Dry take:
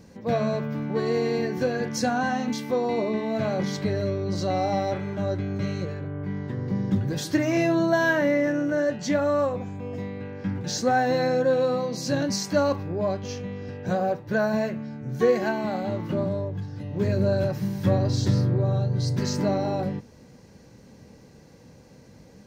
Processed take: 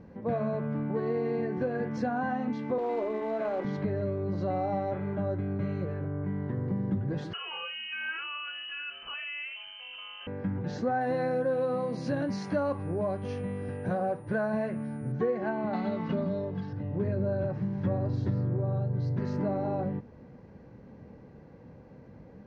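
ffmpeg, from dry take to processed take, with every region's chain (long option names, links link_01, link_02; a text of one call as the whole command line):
ffmpeg -i in.wav -filter_complex "[0:a]asettb=1/sr,asplit=3[link_01][link_02][link_03];[link_01]atrim=end=2.784[link_04];[link_02]atrim=start=2.78:end=3.65,asetpts=PTS-STARTPTS,afade=type=in:duration=0.004:curve=qsin,afade=type=out:start_time=0.866:duration=0.004:curve=qsin,highpass=frequency=290:width=0.5412,highpass=frequency=290:width=1.3066,acrusher=bits=3:mode=log:mix=0:aa=0.000001[link_05];[link_03]atrim=start=3.646[link_06];[link_04][link_05]acrossfade=duration=0.004:curve1=hsin:curve2=qsin[link_07];[link_07][link_06]acrossfade=duration=0.004:curve1=qsin:curve2=hsin,asettb=1/sr,asplit=3[link_08][link_09][link_10];[link_08]atrim=end=7.334[link_11];[link_09]atrim=start=7.33:end=10.27,asetpts=PTS-STARTPTS,afade=type=in:duration=0.004:curve=qsin,afade=type=out:start_time=2.936:duration=0.004:curve=qsin,lowpass=frequency=2700:width_type=q:width=0.5098,lowpass=frequency=2700:width_type=q:width=0.6013,lowpass=frequency=2700:width_type=q:width=0.9,lowpass=frequency=2700:width_type=q:width=2.563,afreqshift=-3200,acompressor=threshold=-29dB:ratio=2.5:attack=3.2:release=140:knee=1:detection=peak[link_12];[link_10]atrim=start=10.266[link_13];[link_11][link_12]acrossfade=duration=0.004:curve1=hsin:curve2=qsin[link_14];[link_14][link_13]acrossfade=duration=0.004:curve1=qsin:curve2=hsin,asettb=1/sr,asplit=3[link_15][link_16][link_17];[link_15]atrim=end=11.014[link_18];[link_16]atrim=start=11.01:end=15.12,asetpts=PTS-STARTPTS,afade=type=in:duration=0.004:curve=qsin,afade=type=out:start_time=4.106:duration=0.004:curve=qsin,equalizer=frequency=4800:width=0.38:gain=5,aeval=exprs='val(0)+0.0282*sin(2*PI*9600*n/s)':channel_layout=same[link_19];[link_17]atrim=start=15.116[link_20];[link_18][link_19]acrossfade=duration=0.004:curve1=hsin:curve2=qsin[link_21];[link_21][link_20]acrossfade=duration=0.004:curve1=qsin:curve2=hsin,asettb=1/sr,asplit=3[link_22][link_23][link_24];[link_22]atrim=end=15.734[link_25];[link_23]atrim=start=15.73:end=16.73,asetpts=PTS-STARTPTS,afade=type=in:duration=0.004:curve=qsin,afade=type=out:start_time=0.996:duration=0.004:curve=qsin,equalizer=frequency=4700:width=0.69:gain=14,aecho=1:1:4.5:0.73,atrim=end_sample=44100[link_26];[link_24]atrim=start=16.726[link_27];[link_25][link_26]acrossfade=duration=0.004:curve1=hsin:curve2=qsin[link_28];[link_28][link_27]acrossfade=duration=0.004:curve1=qsin:curve2=hsin,lowpass=1600,acompressor=threshold=-29dB:ratio=2.5" out.wav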